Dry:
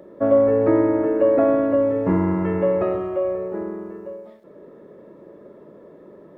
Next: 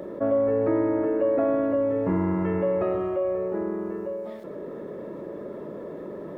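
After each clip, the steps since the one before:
envelope flattener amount 50%
level −8 dB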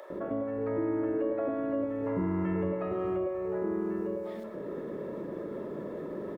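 downward compressor, threshold −26 dBFS, peak gain reduction 7.5 dB
multiband delay without the direct sound highs, lows 100 ms, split 640 Hz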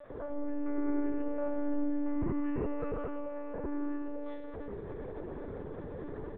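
feedback delay network reverb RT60 2 s, low-frequency decay 0.75×, high-frequency decay 0.9×, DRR 6 dB
one-pitch LPC vocoder at 8 kHz 290 Hz
level −4.5 dB

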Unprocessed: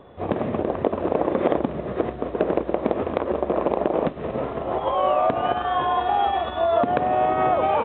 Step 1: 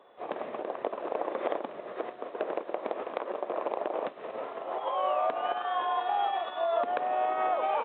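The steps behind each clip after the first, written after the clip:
high-pass filter 550 Hz 12 dB per octave
level −6.5 dB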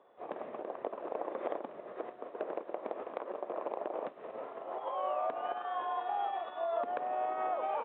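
high-shelf EQ 2,900 Hz −12 dB
level −5 dB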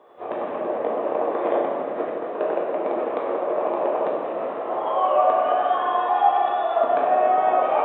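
convolution reverb RT60 2.3 s, pre-delay 6 ms, DRR −4 dB
level +9 dB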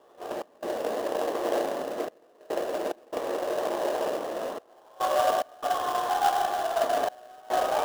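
gate pattern "xx.xxxxxxx.." 72 BPM −24 dB
in parallel at −5.5 dB: sample-rate reduction 2,300 Hz, jitter 20%
on the sum: level −8 dB

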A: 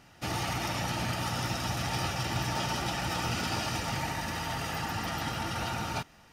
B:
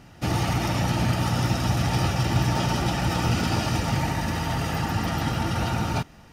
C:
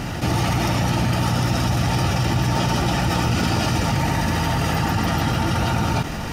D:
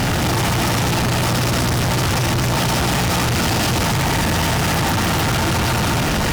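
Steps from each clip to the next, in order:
low-shelf EQ 500 Hz +9 dB; level +3 dB
envelope flattener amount 70%
fuzz pedal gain 41 dB, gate −46 dBFS; level −4 dB

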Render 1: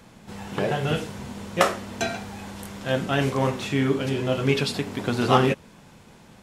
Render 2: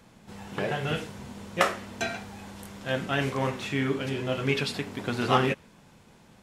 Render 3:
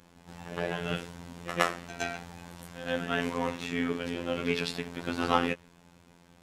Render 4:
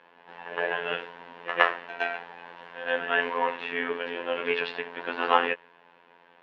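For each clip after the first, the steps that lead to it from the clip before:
dynamic equaliser 2,000 Hz, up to +5 dB, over −38 dBFS, Q 0.96; level −5.5 dB
backwards echo 115 ms −12 dB; phases set to zero 86.3 Hz; level −1 dB
loudspeaker in its box 400–3,400 Hz, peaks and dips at 460 Hz +7 dB, 680 Hz +3 dB, 970 Hz +9 dB, 1,700 Hz +10 dB, 2,800 Hz +6 dB

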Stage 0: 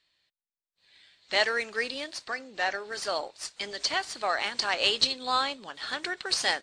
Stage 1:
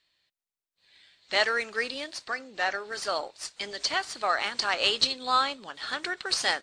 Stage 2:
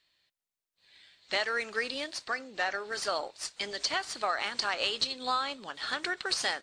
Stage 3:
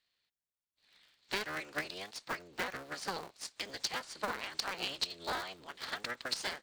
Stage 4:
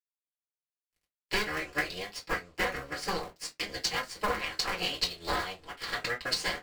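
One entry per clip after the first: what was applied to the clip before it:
dynamic equaliser 1,300 Hz, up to +5 dB, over −44 dBFS, Q 3.9
downward compressor 6 to 1, threshold −26 dBFS, peak gain reduction 8.5 dB
sub-harmonics by changed cycles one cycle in 3, inverted; transient designer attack +5 dB, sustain 0 dB; level −9 dB
dead-zone distortion −56 dBFS; convolution reverb RT60 0.15 s, pre-delay 3 ms, DRR −2 dB

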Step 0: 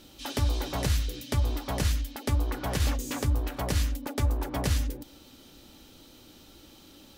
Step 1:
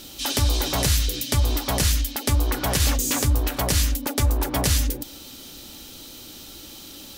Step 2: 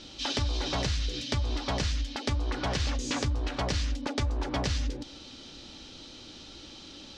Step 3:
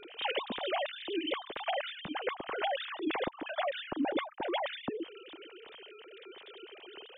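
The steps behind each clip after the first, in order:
high-shelf EQ 3,300 Hz +10.5 dB; in parallel at +2 dB: brickwall limiter −21 dBFS, peak gain reduction 8.5 dB
low-pass filter 5,500 Hz 24 dB per octave; downward compressor, threshold −22 dBFS, peak gain reduction 6.5 dB; level −3.5 dB
three sine waves on the formant tracks; level −6 dB

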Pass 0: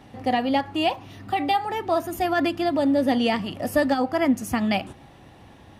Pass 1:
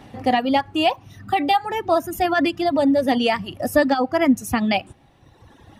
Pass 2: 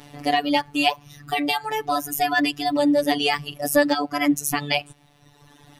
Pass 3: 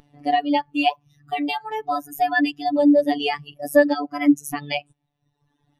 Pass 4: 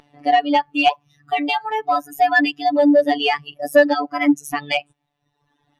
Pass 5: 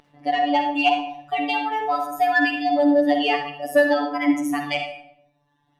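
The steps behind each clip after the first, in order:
reverb reduction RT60 1.5 s; level +4.5 dB
high-shelf EQ 2,800 Hz +11 dB; phases set to zero 145 Hz; level −1 dB
every bin expanded away from the loudest bin 1.5 to 1
mid-hump overdrive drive 13 dB, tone 3,500 Hz, clips at −1.5 dBFS
convolution reverb RT60 0.70 s, pre-delay 44 ms, DRR 3.5 dB; level −4.5 dB

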